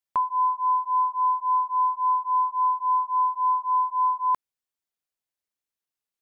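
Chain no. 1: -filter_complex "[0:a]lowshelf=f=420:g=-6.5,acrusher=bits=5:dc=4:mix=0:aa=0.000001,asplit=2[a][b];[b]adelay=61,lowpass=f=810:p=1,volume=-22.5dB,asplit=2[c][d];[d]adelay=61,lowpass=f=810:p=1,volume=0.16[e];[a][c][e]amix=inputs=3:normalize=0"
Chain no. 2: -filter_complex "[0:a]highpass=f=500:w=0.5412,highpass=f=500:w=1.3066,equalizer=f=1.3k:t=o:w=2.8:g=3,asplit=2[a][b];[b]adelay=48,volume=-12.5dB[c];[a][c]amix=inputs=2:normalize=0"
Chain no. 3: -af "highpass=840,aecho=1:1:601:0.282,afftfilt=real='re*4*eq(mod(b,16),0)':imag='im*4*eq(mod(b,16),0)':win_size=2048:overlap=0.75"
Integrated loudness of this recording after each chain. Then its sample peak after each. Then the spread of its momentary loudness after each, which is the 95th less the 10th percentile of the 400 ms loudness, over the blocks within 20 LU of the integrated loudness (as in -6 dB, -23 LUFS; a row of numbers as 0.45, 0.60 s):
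-23.0, -22.5, -32.0 LUFS; -17.5, -14.0, -20.0 dBFS; 2, 2, 11 LU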